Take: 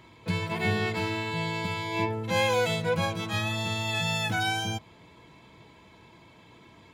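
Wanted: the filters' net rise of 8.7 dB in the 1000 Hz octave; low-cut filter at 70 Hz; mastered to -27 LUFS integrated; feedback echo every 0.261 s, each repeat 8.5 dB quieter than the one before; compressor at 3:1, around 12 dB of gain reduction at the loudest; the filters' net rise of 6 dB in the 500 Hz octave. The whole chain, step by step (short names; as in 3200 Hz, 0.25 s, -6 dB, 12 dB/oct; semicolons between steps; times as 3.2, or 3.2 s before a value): HPF 70 Hz; bell 500 Hz +4.5 dB; bell 1000 Hz +9 dB; compressor 3:1, threshold -32 dBFS; feedback echo 0.261 s, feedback 38%, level -8.5 dB; gain +5 dB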